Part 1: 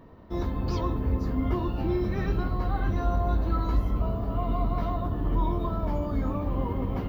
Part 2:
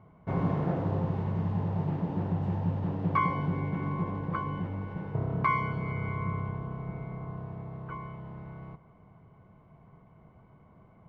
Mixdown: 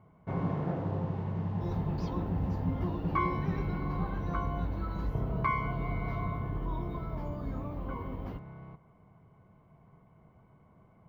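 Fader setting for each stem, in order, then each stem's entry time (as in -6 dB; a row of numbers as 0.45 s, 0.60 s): -10.0 dB, -3.5 dB; 1.30 s, 0.00 s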